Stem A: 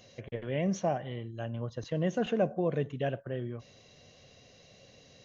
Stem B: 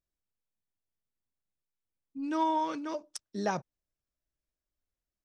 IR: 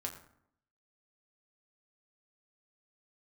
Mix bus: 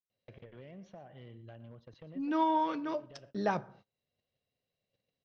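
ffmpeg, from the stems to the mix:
-filter_complex "[0:a]alimiter=level_in=2.5dB:limit=-24dB:level=0:latency=1:release=372,volume=-2.5dB,acompressor=threshold=-43dB:ratio=5,asoftclip=type=hard:threshold=-38.5dB,adelay=100,volume=-4.5dB,asplit=2[a][b];[b]volume=-15.5dB[c];[1:a]highshelf=f=8.9k:g=-10,acontrast=76,volume=-8.5dB,asplit=3[d][e][f];[e]volume=-9.5dB[g];[f]apad=whole_len=235836[h];[a][h]sidechaincompress=threshold=-41dB:ratio=8:attack=23:release=544[i];[2:a]atrim=start_sample=2205[j];[g][j]afir=irnorm=-1:irlink=0[k];[c]aecho=0:1:116:1[l];[i][d][k][l]amix=inputs=4:normalize=0,lowpass=f=4.6k:w=0.5412,lowpass=f=4.6k:w=1.3066,agate=range=-26dB:threshold=-57dB:ratio=16:detection=peak"

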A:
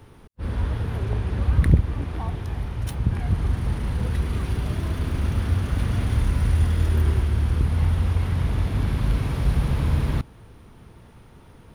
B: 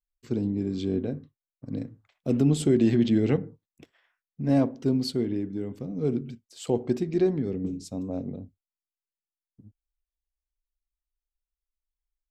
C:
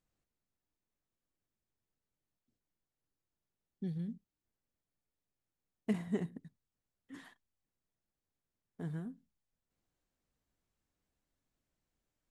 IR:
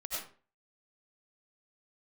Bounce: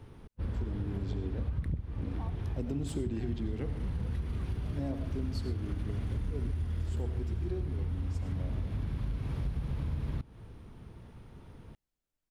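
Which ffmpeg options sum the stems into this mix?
-filter_complex "[0:a]lowpass=f=3.6k:p=1,equalizer=f=1.2k:t=o:w=3:g=-5,volume=-1.5dB[a];[1:a]adelay=300,volume=-6.5dB,asplit=2[b][c];[c]volume=-8dB[d];[2:a]volume=-5.5dB[e];[3:a]atrim=start_sample=2205[f];[d][f]afir=irnorm=-1:irlink=0[g];[a][b][e][g]amix=inputs=4:normalize=0,acompressor=threshold=-31dB:ratio=6"

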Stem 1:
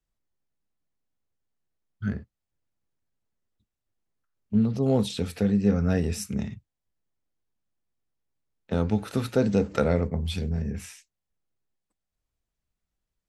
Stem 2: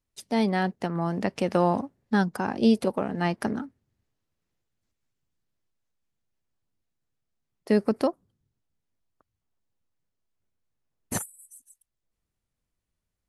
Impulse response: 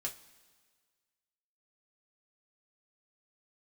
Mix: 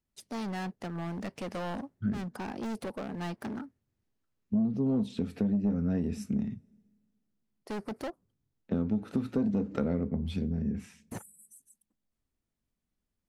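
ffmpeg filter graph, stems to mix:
-filter_complex "[0:a]equalizer=f=240:t=o:w=1.1:g=14,asoftclip=type=tanh:threshold=-5.5dB,highshelf=f=3.9k:g=-10,volume=-7dB,asplit=2[a][b];[b]volume=-14dB[c];[1:a]deesser=0.8,volume=27.5dB,asoftclip=hard,volume=-27.5dB,volume=-5.5dB[d];[2:a]atrim=start_sample=2205[e];[c][e]afir=irnorm=-1:irlink=0[f];[a][d][f]amix=inputs=3:normalize=0,acompressor=threshold=-28dB:ratio=3"

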